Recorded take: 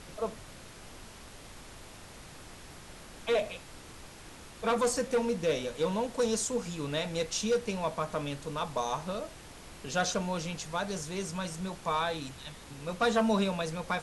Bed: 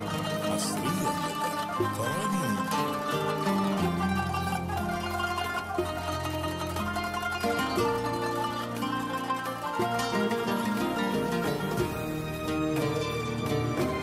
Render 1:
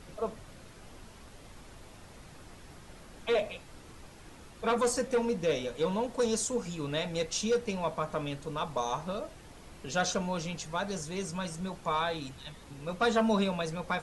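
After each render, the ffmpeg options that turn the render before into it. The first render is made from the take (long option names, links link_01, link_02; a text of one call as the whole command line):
ffmpeg -i in.wav -af "afftdn=noise_reduction=6:noise_floor=-50" out.wav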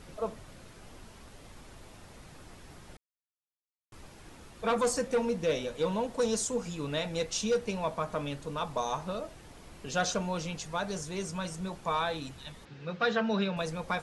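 ffmpeg -i in.wav -filter_complex "[0:a]asettb=1/sr,asplit=3[link_01][link_02][link_03];[link_01]atrim=end=12.654[link_04];[link_02]atrim=start=12.65:end=13.57,asetpts=PTS-STARTPTS,afade=type=in:duration=0.004:curve=qsin,afade=type=out:start_time=0.916:duration=0.004:curve=qsin,highpass=140,equalizer=frequency=160:width_type=q:width=4:gain=5,equalizer=frequency=260:width_type=q:width=4:gain=-8,equalizer=frequency=640:width_type=q:width=4:gain=-5,equalizer=frequency=1000:width_type=q:width=4:gain=-7,equalizer=frequency=1600:width_type=q:width=4:gain=5,lowpass=frequency=5000:width=0.5412,lowpass=frequency=5000:width=1.3066[link_05];[link_03]atrim=start=13.566[link_06];[link_04][link_05]acrossfade=duration=0.004:curve1=hsin:curve2=qsin[link_07];[link_07][link_06]acrossfade=duration=0.004:curve1=qsin:curve2=hsin,asplit=3[link_08][link_09][link_10];[link_08]atrim=end=2.97,asetpts=PTS-STARTPTS,afade=type=out:start_time=2.966:duration=0.004:curve=hsin[link_11];[link_09]atrim=start=2.97:end=3.92,asetpts=PTS-STARTPTS,volume=0[link_12];[link_10]atrim=start=3.92,asetpts=PTS-STARTPTS,afade=type=in:duration=0.004:curve=hsin[link_13];[link_11][link_12][link_13]concat=n=3:v=0:a=1" out.wav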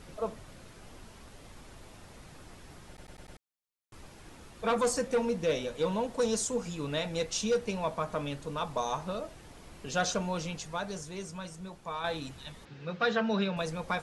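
ffmpeg -i in.wav -filter_complex "[0:a]asplit=7[link_01][link_02][link_03][link_04][link_05][link_06][link_07];[link_01]atrim=end=2.982[link_08];[link_02]atrim=start=2.878:end=2.982[link_09];[link_03]atrim=start=2.878:end=2.982[link_10];[link_04]atrim=start=2.878:end=2.982[link_11];[link_05]atrim=start=2.878:end=2.982[link_12];[link_06]atrim=start=3.378:end=12.04,asetpts=PTS-STARTPTS,afade=type=out:start_time=7.072:duration=1.59:curve=qua:silence=0.446684[link_13];[link_07]atrim=start=12.04,asetpts=PTS-STARTPTS,afade=type=in:duration=0.004:curve=hsin:silence=0.446684[link_14];[link_08][link_09]acrossfade=duration=0.004:curve1=hsin:curve2=hsin[link_15];[link_15][link_10]acrossfade=duration=0.004:curve1=hsin:curve2=hsin[link_16];[link_16][link_11]acrossfade=duration=0.004:curve1=hsin:curve2=hsin[link_17];[link_17][link_12]acrossfade=duration=0.004:curve1=hsin:curve2=hsin[link_18];[link_13][link_14]concat=n=2:v=0:a=1[link_19];[link_18][link_19]acrossfade=duration=0.004:curve1=hsin:curve2=hsin" out.wav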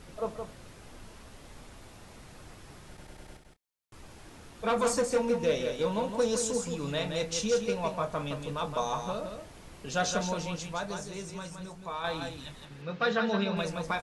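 ffmpeg -i in.wav -filter_complex "[0:a]asplit=2[link_01][link_02];[link_02]adelay=29,volume=-13dB[link_03];[link_01][link_03]amix=inputs=2:normalize=0,asplit=2[link_04][link_05];[link_05]aecho=0:1:168:0.473[link_06];[link_04][link_06]amix=inputs=2:normalize=0" out.wav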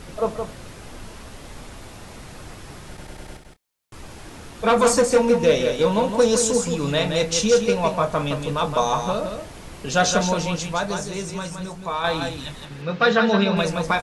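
ffmpeg -i in.wav -af "volume=10.5dB" out.wav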